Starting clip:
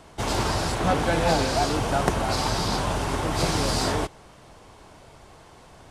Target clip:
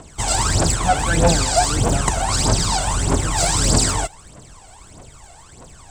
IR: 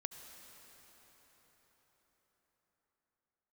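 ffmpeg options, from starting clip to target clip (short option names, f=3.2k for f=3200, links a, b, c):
-af "lowpass=f=7.9k:t=q:w=7.4,aphaser=in_gain=1:out_gain=1:delay=1.5:decay=0.73:speed=1.6:type=triangular"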